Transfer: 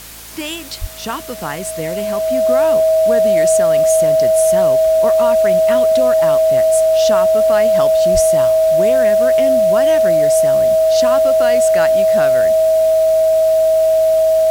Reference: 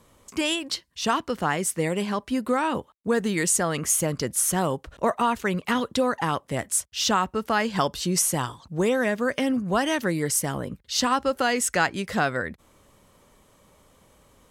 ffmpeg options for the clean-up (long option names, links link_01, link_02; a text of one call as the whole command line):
ffmpeg -i in.wav -filter_complex "[0:a]bandreject=frequency=55.1:width_type=h:width=4,bandreject=frequency=110.2:width_type=h:width=4,bandreject=frequency=165.3:width_type=h:width=4,bandreject=frequency=220.4:width_type=h:width=4,bandreject=frequency=275.5:width_type=h:width=4,bandreject=frequency=640:width=30,asplit=3[link_01][link_02][link_03];[link_01]afade=type=out:start_time=0.8:duration=0.02[link_04];[link_02]highpass=frequency=140:width=0.5412,highpass=frequency=140:width=1.3066,afade=type=in:start_time=0.8:duration=0.02,afade=type=out:start_time=0.92:duration=0.02[link_05];[link_03]afade=type=in:start_time=0.92:duration=0.02[link_06];[link_04][link_05][link_06]amix=inputs=3:normalize=0,asplit=3[link_07][link_08][link_09];[link_07]afade=type=out:start_time=8.13:duration=0.02[link_10];[link_08]highpass=frequency=140:width=0.5412,highpass=frequency=140:width=1.3066,afade=type=in:start_time=8.13:duration=0.02,afade=type=out:start_time=8.25:duration=0.02[link_11];[link_09]afade=type=in:start_time=8.25:duration=0.02[link_12];[link_10][link_11][link_12]amix=inputs=3:normalize=0,afwtdn=0.02" out.wav